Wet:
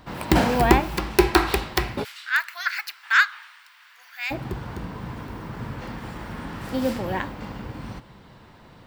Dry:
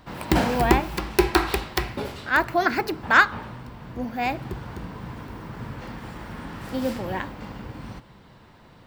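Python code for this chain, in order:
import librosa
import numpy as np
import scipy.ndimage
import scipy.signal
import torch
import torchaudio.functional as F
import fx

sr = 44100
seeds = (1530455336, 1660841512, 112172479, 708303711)

y = fx.highpass(x, sr, hz=1500.0, slope=24, at=(2.03, 4.3), fade=0.02)
y = y * 10.0 ** (2.0 / 20.0)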